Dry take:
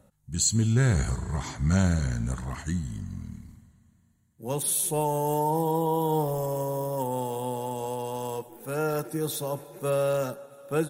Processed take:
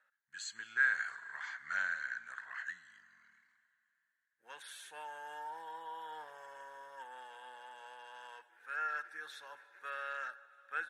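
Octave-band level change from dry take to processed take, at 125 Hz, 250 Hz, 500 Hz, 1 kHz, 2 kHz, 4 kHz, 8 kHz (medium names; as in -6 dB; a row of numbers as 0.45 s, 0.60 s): under -40 dB, under -40 dB, -28.0 dB, -13.0 dB, +5.5 dB, -13.0 dB, -24.5 dB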